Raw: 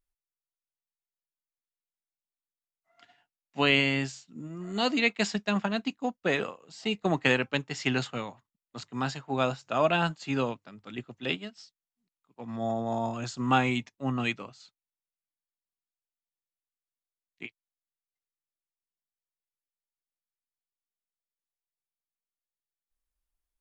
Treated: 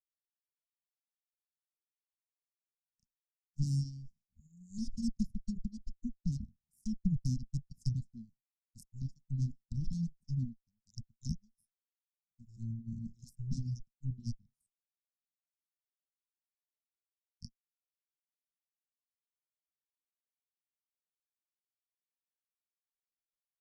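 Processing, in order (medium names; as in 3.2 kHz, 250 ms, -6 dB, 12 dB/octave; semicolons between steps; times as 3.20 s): Chebyshev shaper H 3 -9 dB, 5 -34 dB, 8 -11 dB, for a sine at -8 dBFS; low-pass that closes with the level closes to 2.3 kHz, closed at -29 dBFS; Chebyshev band-stop 230–5300 Hz, order 5; reverb removal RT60 1.3 s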